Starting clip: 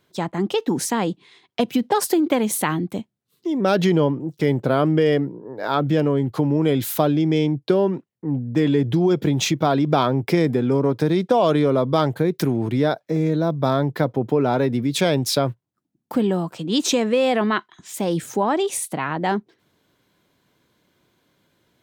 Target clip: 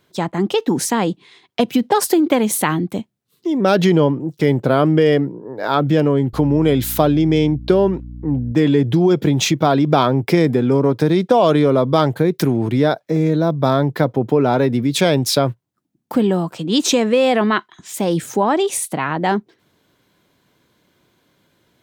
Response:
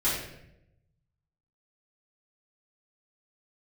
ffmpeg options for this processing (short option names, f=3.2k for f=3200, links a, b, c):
-filter_complex "[0:a]asettb=1/sr,asplit=3[a][b][c];[a]atrim=end=6.334[d];[b]atrim=start=6.33:end=8.52,asetpts=PTS-STARTPTS,afade=t=in:d=0.004:c=qsin,afade=t=out:st=2.186:d=0.004:c=qsin,aeval=exprs='val(0)+0.0178*(sin(2*PI*60*n/s)+sin(2*PI*2*60*n/s)/2+sin(2*PI*3*60*n/s)/3+sin(2*PI*4*60*n/s)/4+sin(2*PI*5*60*n/s)/5)':c=same[e];[c]atrim=start=8.516[f];[d][e]acrossfade=d=0.004:c1=hsin:c2=qsin[g];[g][f]acrossfade=d=0.004:c1=qsin:c2=hsin,volume=4dB"